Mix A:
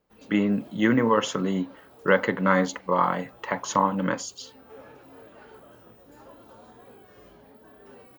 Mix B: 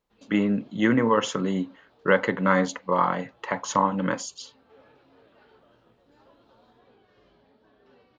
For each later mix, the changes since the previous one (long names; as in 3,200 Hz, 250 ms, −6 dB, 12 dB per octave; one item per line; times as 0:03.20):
background: add transistor ladder low-pass 4,900 Hz, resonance 45%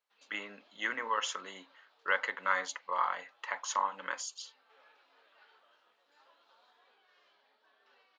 speech −4.5 dB
master: add high-pass filter 1,100 Hz 12 dB per octave